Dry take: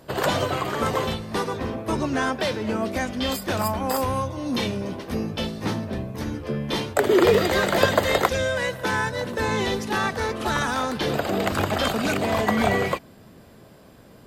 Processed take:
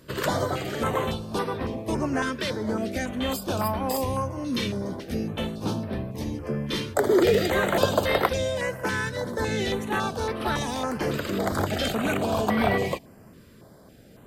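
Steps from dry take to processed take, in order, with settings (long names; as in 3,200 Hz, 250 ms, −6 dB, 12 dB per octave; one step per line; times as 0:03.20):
in parallel at −10 dB: soft clipping −14.5 dBFS, distortion −15 dB
on the sum: notch on a step sequencer 3.6 Hz 760–6,900 Hz
level −3.5 dB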